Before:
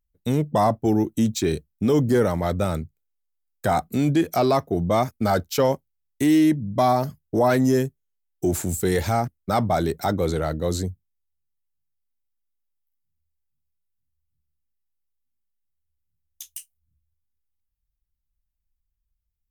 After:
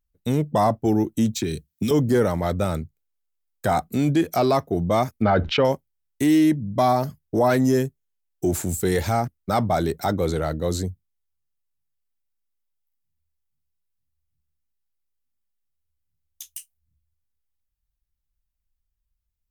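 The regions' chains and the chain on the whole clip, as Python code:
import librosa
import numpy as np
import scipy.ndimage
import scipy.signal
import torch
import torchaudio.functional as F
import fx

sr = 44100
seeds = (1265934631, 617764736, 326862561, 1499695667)

y = fx.chain(x, sr, fx.highpass(hz=74.0, slope=12),
    fx.peak_eq(hz=780.0, db=-12.0, octaves=2.2),
    fx.band_squash(depth_pct=100), at=(1.35, 1.91))
y = fx.chain(y, sr, fx.lowpass(hz=3000.0, slope=24),
    fx.env_flatten(amount_pct=70), at=(5.22, 5.65))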